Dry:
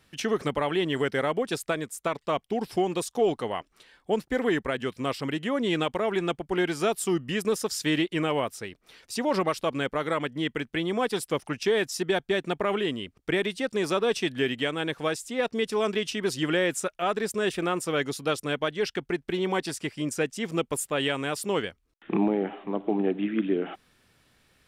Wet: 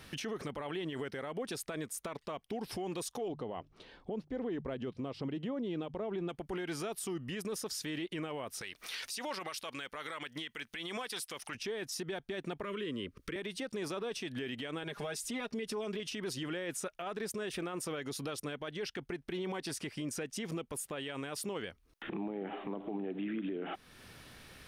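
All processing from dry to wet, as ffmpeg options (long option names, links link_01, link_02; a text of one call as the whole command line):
ffmpeg -i in.wav -filter_complex "[0:a]asettb=1/sr,asplit=3[link_01][link_02][link_03];[link_01]atrim=end=3.284[link_04];[link_02]atrim=start=3.28:end=6.29,asetpts=PTS-STARTPTS,afade=type=in:duration=0.004:curve=qsin,afade=type=out:start_time=3.006:duration=0.004:curve=qsin,lowpass=3200,equalizer=frequency=1800:width=0.72:gain=-12.5,bandreject=frequency=50:width_type=h:width=6,bandreject=frequency=100:width_type=h:width=6,bandreject=frequency=150:width_type=h:width=6[link_05];[link_03]atrim=start=6.286[link_06];[link_04][link_05]acrossfade=duration=0.004:curve1=hsin:curve2=qsin[link_07];[link_07][link_06]acrossfade=duration=0.004:curve1=qsin:curve2=hsin,asettb=1/sr,asplit=3[link_08][link_09][link_10];[link_08]atrim=end=8.614[link_11];[link_09]atrim=start=8.61:end=11.55,asetpts=PTS-STARTPTS,afade=type=in:duration=0.004:curve=qsin,afade=type=out:start_time=2.936:duration=0.004:curve=qsin,tiltshelf=frequency=850:gain=-9.5,acompressor=mode=upward:threshold=-39dB:ratio=2.5:attack=3.2:release=140:knee=2.83:detection=peak[link_12];[link_10]atrim=start=11.546[link_13];[link_11][link_12]acrossfade=duration=0.004:curve1=hsin:curve2=qsin[link_14];[link_14][link_13]acrossfade=duration=0.004:curve1=qsin:curve2=hsin,asettb=1/sr,asplit=3[link_15][link_16][link_17];[link_15]atrim=end=12.634[link_18];[link_16]atrim=start=12.63:end=13.36,asetpts=PTS-STARTPTS,afade=type=in:duration=0.004:curve=qsin,afade=type=out:start_time=0.726:duration=0.004:curve=qsin,acrossover=split=330|1600[link_19][link_20][link_21];[link_19]acompressor=threshold=-43dB:ratio=4[link_22];[link_20]acompressor=threshold=-39dB:ratio=4[link_23];[link_21]acompressor=threshold=-46dB:ratio=4[link_24];[link_22][link_23][link_24]amix=inputs=3:normalize=0,asuperstop=centerf=760:order=8:qfactor=2[link_25];[link_17]atrim=start=13.356[link_26];[link_18][link_25]acrossfade=duration=0.004:curve1=hsin:curve2=qsin[link_27];[link_27][link_26]acrossfade=duration=0.004:curve1=qsin:curve2=hsin,asettb=1/sr,asplit=3[link_28][link_29][link_30];[link_28]atrim=end=14.834[link_31];[link_29]atrim=start=14.83:end=16,asetpts=PTS-STARTPTS,afade=type=in:duration=0.004:curve=qsin,afade=type=out:start_time=1.166:duration=0.004:curve=qsin,aecho=1:1:4.9:0.74,atrim=end_sample=51597,acompressor=threshold=-34dB:ratio=3:attack=3.2:release=140:knee=1:detection=peak[link_32];[link_30]atrim=start=15.996[link_33];[link_31][link_32]acrossfade=duration=0.004:curve1=hsin:curve2=qsin[link_34];[link_34][link_33]acrossfade=duration=0.004:curve1=qsin:curve2=hsin,acompressor=threshold=-49dB:ratio=2,bandreject=frequency=7500:width=8.8,alimiter=level_in=16.5dB:limit=-24dB:level=0:latency=1:release=58,volume=-16.5dB,volume=10dB" out.wav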